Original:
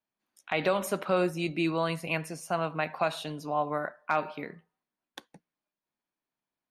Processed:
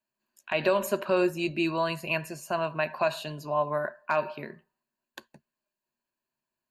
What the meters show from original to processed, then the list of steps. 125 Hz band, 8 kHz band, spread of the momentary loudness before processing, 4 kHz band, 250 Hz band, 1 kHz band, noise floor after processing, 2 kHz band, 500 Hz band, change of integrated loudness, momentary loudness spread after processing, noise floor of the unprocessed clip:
−1.5 dB, 0.0 dB, 11 LU, +1.5 dB, +0.5 dB, +0.5 dB, below −85 dBFS, +2.0 dB, +3.0 dB, +1.5 dB, 7 LU, below −85 dBFS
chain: EQ curve with evenly spaced ripples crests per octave 1.4, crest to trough 10 dB

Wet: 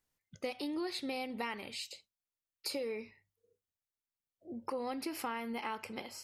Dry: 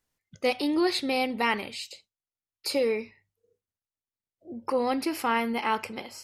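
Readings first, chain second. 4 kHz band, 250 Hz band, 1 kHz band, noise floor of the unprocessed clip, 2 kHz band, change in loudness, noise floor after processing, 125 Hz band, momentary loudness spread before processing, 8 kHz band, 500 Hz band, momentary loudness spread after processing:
−9.5 dB, −11.0 dB, −12.5 dB, below −85 dBFS, −12.5 dB, −11.5 dB, below −85 dBFS, can't be measured, 13 LU, −6.5 dB, −12.0 dB, 8 LU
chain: high-shelf EQ 12,000 Hz +3.5 dB
downward compressor, threshold −31 dBFS, peak gain reduction 10.5 dB
level −4.5 dB

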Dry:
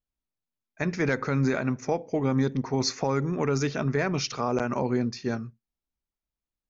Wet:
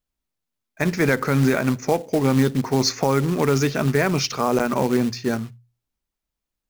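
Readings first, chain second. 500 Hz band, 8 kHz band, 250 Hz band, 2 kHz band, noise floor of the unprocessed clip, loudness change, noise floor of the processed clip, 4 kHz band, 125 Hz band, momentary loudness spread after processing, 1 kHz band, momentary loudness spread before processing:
+6.5 dB, can't be measured, +6.5 dB, +6.5 dB, below −85 dBFS, +6.5 dB, −84 dBFS, +7.0 dB, +6.0 dB, 6 LU, +6.5 dB, 6 LU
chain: floating-point word with a short mantissa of 2 bits
mains-hum notches 60/120 Hz
level +6.5 dB

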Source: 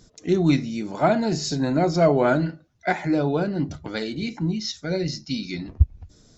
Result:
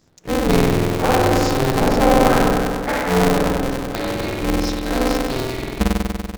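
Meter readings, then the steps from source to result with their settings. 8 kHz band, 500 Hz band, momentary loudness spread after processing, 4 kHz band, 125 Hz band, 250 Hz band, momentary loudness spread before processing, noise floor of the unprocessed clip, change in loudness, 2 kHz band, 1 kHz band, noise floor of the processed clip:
can't be measured, +5.0 dB, 9 LU, +6.0 dB, +3.0 dB, +4.0 dB, 11 LU, −56 dBFS, +5.0 dB, +7.5 dB, +8.5 dB, −34 dBFS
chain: leveller curve on the samples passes 1
spring reverb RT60 2.2 s, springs 48 ms, chirp 50 ms, DRR −5 dB
ring modulator with a square carrier 130 Hz
level −5.5 dB

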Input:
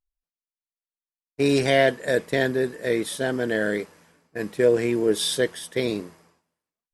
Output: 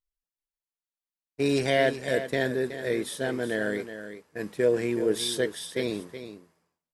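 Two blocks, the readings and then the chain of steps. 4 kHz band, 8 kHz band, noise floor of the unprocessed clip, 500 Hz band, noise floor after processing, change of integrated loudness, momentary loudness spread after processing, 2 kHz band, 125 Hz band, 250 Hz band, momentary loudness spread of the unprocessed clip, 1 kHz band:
−4.0 dB, −4.0 dB, below −85 dBFS, −4.0 dB, below −85 dBFS, −4.0 dB, 14 LU, −4.0 dB, −4.0 dB, −4.0 dB, 12 LU, −4.0 dB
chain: single-tap delay 372 ms −11 dB
level −4.5 dB

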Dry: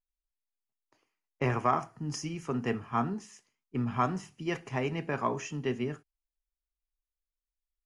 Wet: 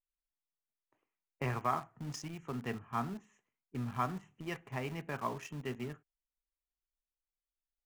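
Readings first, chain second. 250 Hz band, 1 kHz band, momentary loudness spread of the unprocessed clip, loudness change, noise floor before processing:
−8.0 dB, −6.0 dB, 8 LU, −6.5 dB, below −85 dBFS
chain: adaptive Wiener filter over 9 samples
dynamic equaliser 370 Hz, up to −5 dB, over −43 dBFS, Q 0.78
in parallel at −9.5 dB: bit-depth reduction 6 bits, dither none
on the sum: level −7 dB

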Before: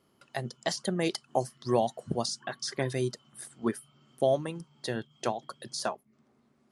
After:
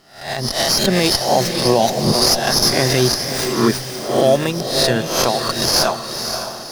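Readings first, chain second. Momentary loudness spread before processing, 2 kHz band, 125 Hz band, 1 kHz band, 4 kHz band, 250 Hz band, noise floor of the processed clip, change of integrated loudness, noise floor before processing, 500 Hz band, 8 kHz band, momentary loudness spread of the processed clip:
11 LU, +17.5 dB, +15.0 dB, +15.0 dB, +22.5 dB, +14.5 dB, −31 dBFS, +16.0 dB, −69 dBFS, +14.0 dB, +20.5 dB, 9 LU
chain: peak hold with a rise ahead of every peak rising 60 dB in 0.49 s
parametric band 5,300 Hz +14.5 dB 0.9 octaves
in parallel at −2 dB: downward compressor, threshold −32 dBFS, peak gain reduction 15.5 dB
on the sum: brickwall limiter −15 dBFS, peak gain reduction 11 dB
automatic gain control gain up to 5 dB
on a send: feedback delay with all-pass diffusion 550 ms, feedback 41%, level −7 dB
on the sum: windowed peak hold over 3 samples
level +6 dB

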